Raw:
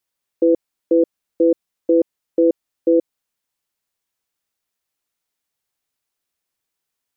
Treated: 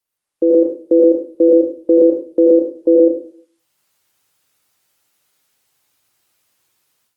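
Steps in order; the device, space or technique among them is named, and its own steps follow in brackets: 1.48–2.01 bell 79 Hz +6 dB -> +14.5 dB 0.42 oct; far-field microphone of a smart speaker (reverb RT60 0.40 s, pre-delay 80 ms, DRR -1 dB; HPF 89 Hz 24 dB/oct; AGC gain up to 13 dB; gain -1 dB; Opus 32 kbps 48000 Hz)

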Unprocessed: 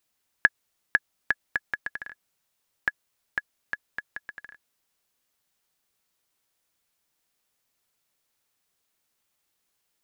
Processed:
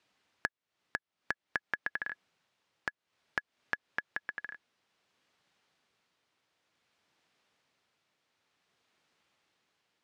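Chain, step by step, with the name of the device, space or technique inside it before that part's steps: AM radio (BPF 100–3800 Hz; compressor 10:1, threshold -37 dBFS, peak gain reduction 23.5 dB; soft clip -17.5 dBFS, distortion -19 dB; tremolo 0.55 Hz, depth 35%); gain +8 dB

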